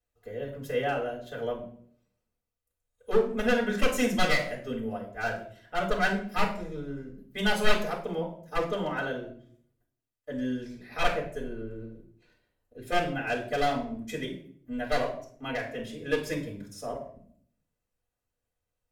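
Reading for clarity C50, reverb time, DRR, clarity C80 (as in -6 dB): 8.5 dB, 0.55 s, -4.0 dB, 13.0 dB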